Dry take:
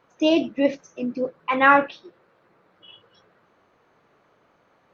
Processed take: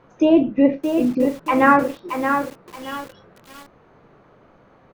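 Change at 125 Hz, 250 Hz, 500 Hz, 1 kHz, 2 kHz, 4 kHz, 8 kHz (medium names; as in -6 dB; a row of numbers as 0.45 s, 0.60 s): +10.0 dB, +7.5 dB, +4.0 dB, +2.5 dB, -1.0 dB, -5.0 dB, no reading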